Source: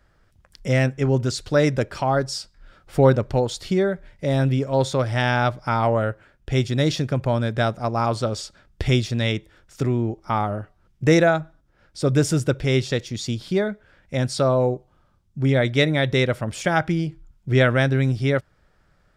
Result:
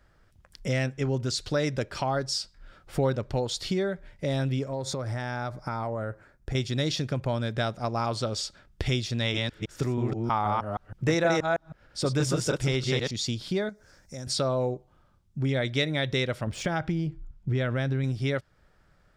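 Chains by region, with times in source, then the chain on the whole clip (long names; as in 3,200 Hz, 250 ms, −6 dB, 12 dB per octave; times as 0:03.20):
0:04.68–0:06.55: parametric band 3,000 Hz −11.5 dB 0.59 octaves + downward compressor 5 to 1, threshold −25 dBFS
0:09.18–0:13.11: delay that plays each chunk backwards 159 ms, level −1.5 dB + dynamic equaliser 980 Hz, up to +7 dB, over −36 dBFS, Q 1.5
0:13.69–0:14.27: high shelf with overshoot 4,200 Hz +11 dB, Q 3 + downward compressor 2.5 to 1, threshold −40 dBFS
0:16.47–0:18.04: running median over 3 samples + spectral tilt −1.5 dB per octave + downward compressor 2 to 1, threshold −18 dBFS
whole clip: dynamic equaliser 4,400 Hz, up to +6 dB, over −42 dBFS, Q 0.78; downward compressor 2 to 1, threshold −27 dBFS; level −1.5 dB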